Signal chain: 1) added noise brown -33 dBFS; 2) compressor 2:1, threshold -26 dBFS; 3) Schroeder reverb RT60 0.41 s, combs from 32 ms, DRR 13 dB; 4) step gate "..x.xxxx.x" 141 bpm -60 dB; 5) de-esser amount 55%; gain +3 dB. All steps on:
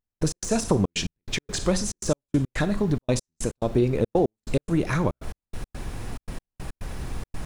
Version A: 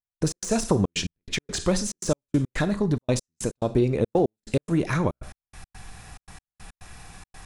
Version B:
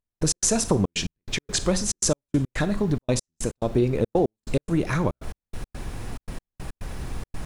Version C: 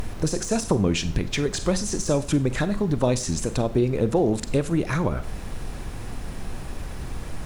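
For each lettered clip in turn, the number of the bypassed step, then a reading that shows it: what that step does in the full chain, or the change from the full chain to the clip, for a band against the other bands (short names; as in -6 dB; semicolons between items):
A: 1, momentary loudness spread change -8 LU; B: 5, 8 kHz band +6.5 dB; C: 4, crest factor change -2.0 dB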